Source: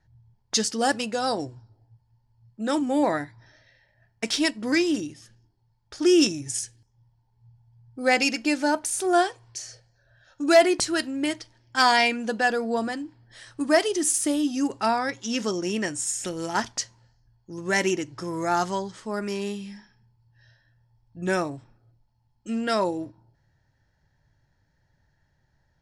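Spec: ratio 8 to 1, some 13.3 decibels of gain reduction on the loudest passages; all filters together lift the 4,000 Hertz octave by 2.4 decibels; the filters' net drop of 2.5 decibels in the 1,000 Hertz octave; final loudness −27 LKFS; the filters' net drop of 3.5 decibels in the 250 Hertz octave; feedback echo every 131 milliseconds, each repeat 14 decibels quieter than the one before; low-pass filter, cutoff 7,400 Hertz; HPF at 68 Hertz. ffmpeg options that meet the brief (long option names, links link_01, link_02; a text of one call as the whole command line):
ffmpeg -i in.wav -af "highpass=68,lowpass=7400,equalizer=frequency=250:width_type=o:gain=-4.5,equalizer=frequency=1000:width_type=o:gain=-3.5,equalizer=frequency=4000:width_type=o:gain=4,acompressor=threshold=-27dB:ratio=8,aecho=1:1:131|262:0.2|0.0399,volume=5.5dB" out.wav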